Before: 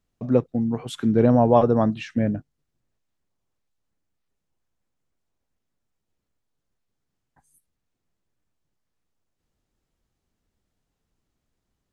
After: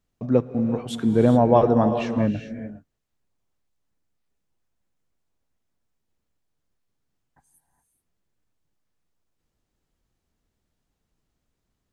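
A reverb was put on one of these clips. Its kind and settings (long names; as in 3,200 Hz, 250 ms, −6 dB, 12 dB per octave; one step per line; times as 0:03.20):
reverb whose tail is shaped and stops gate 440 ms rising, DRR 8 dB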